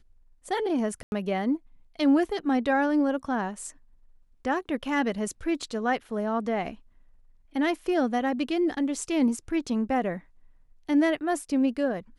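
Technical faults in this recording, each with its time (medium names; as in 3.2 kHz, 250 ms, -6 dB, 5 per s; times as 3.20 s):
1.03–1.12 s: dropout 91 ms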